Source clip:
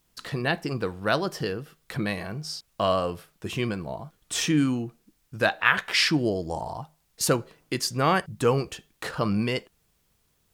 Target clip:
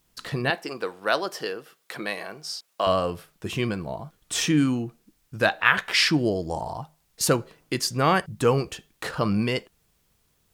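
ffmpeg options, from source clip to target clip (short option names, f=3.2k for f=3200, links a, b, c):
-filter_complex "[0:a]asettb=1/sr,asplit=3[a][b][c];[a]atrim=end=0.504[d];[b]atrim=start=0.5:end=2.87,asetpts=PTS-STARTPTS,afade=t=in:d=0.004:c=qsin,afade=t=out:st=2.366:d=0.004:c=qsin,highpass=400[e];[c]atrim=start=2.866[f];[d][e]acrossfade=d=0.004:c1=hsin:c2=qsin[g];[g][f]acrossfade=d=0.004:c1=qsin:c2=hsin,volume=1.5dB"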